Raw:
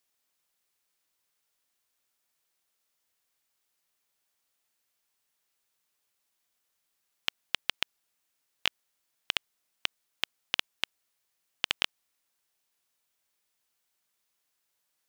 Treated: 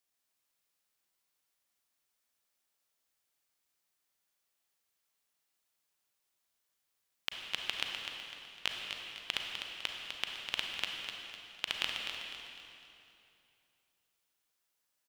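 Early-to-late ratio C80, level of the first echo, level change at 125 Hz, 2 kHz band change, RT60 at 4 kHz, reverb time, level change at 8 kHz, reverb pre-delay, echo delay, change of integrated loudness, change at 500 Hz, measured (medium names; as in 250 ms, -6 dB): 1.0 dB, -7.5 dB, -2.5 dB, -3.0 dB, 2.5 s, 2.8 s, -3.0 dB, 32 ms, 252 ms, -4.5 dB, -2.5 dB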